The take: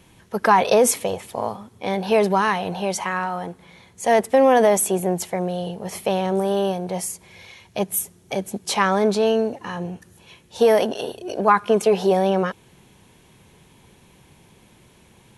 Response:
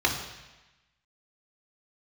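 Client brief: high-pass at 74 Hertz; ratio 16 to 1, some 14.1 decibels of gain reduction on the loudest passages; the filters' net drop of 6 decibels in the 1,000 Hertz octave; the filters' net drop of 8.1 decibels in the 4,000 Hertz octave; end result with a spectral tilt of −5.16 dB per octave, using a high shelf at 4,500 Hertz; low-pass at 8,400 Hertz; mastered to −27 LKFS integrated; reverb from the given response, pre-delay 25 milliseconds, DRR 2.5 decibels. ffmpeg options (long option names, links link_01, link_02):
-filter_complex "[0:a]highpass=74,lowpass=8400,equalizer=frequency=1000:width_type=o:gain=-7.5,equalizer=frequency=4000:width_type=o:gain=-8.5,highshelf=frequency=4500:gain=-4,acompressor=threshold=-27dB:ratio=16,asplit=2[link_01][link_02];[1:a]atrim=start_sample=2205,adelay=25[link_03];[link_02][link_03]afir=irnorm=-1:irlink=0,volume=-16dB[link_04];[link_01][link_04]amix=inputs=2:normalize=0,volume=4.5dB"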